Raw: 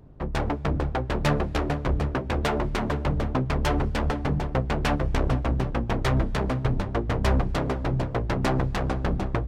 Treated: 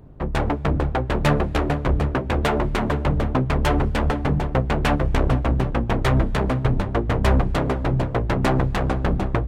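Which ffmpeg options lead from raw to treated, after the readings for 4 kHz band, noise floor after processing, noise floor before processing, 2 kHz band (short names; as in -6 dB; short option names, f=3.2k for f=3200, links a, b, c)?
+3.0 dB, -29 dBFS, -33 dBFS, +4.5 dB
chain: -af "equalizer=f=5.3k:t=o:w=0.77:g=-4.5,volume=4.5dB"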